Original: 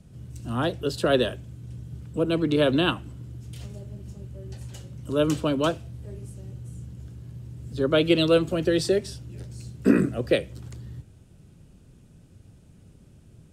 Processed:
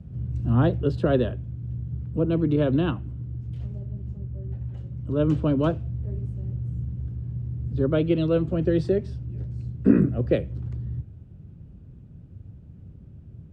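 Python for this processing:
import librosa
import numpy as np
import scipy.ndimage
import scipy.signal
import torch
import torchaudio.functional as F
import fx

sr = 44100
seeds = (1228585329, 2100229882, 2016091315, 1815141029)

y = fx.median_filter(x, sr, points=9, at=(4.18, 4.76), fade=0.02)
y = scipy.signal.sosfilt(scipy.signal.butter(2, 67.0, 'highpass', fs=sr, output='sos'), y)
y = fx.high_shelf(y, sr, hz=5100.0, db=-11.0)
y = fx.rider(y, sr, range_db=10, speed_s=0.5)
y = fx.riaa(y, sr, side='playback')
y = F.gain(torch.from_numpy(y), -3.5).numpy()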